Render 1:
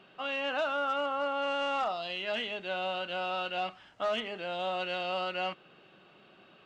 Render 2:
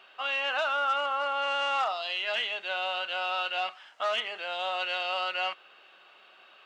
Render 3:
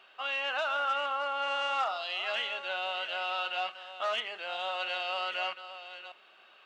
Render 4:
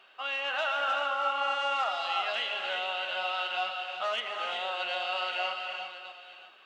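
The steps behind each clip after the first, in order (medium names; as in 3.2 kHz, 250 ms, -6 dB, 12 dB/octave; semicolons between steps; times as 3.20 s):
high-pass 820 Hz 12 dB/octave; trim +5.5 dB
chunks repeated in reverse 680 ms, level -11.5 dB; trim -3 dB
gated-style reverb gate 410 ms rising, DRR 3 dB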